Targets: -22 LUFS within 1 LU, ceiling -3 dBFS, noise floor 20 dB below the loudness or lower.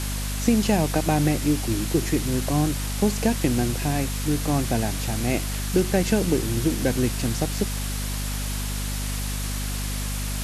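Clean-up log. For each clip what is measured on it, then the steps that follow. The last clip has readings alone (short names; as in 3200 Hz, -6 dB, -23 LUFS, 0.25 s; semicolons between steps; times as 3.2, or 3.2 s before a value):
hum 50 Hz; harmonics up to 250 Hz; hum level -26 dBFS; noise floor -28 dBFS; noise floor target -45 dBFS; loudness -24.5 LUFS; peak -7.0 dBFS; loudness target -22.0 LUFS
-> de-hum 50 Hz, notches 5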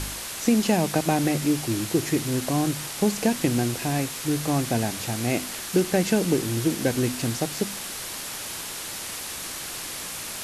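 hum none; noise floor -35 dBFS; noise floor target -46 dBFS
-> noise print and reduce 11 dB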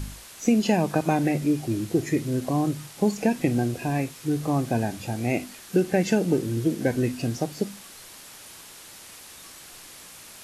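noise floor -46 dBFS; loudness -25.5 LUFS; peak -8.5 dBFS; loudness target -22.0 LUFS
-> gain +3.5 dB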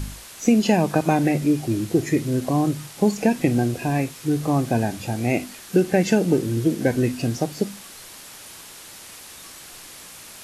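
loudness -22.0 LUFS; peak -5.0 dBFS; noise floor -42 dBFS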